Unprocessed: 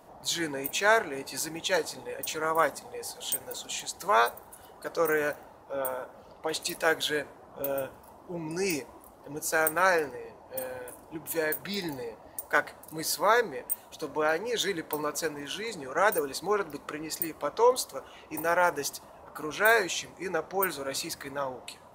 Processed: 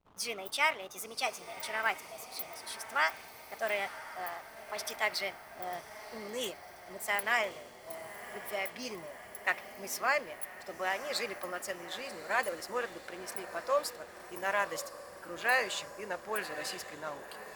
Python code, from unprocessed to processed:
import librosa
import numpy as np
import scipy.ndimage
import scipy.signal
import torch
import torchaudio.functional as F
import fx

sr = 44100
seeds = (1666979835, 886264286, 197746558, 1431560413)

y = fx.speed_glide(x, sr, from_pct=141, to_pct=109)
y = fx.backlash(y, sr, play_db=-43.0)
y = fx.echo_diffused(y, sr, ms=1086, feedback_pct=64, wet_db=-12.0)
y = fx.dynamic_eq(y, sr, hz=2900.0, q=0.73, threshold_db=-38.0, ratio=4.0, max_db=5)
y = y * 10.0 ** (-8.0 / 20.0)